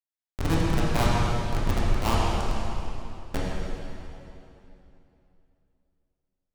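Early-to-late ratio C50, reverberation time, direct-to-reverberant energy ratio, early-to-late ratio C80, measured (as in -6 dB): -3.0 dB, 2.9 s, -6.5 dB, -1.5 dB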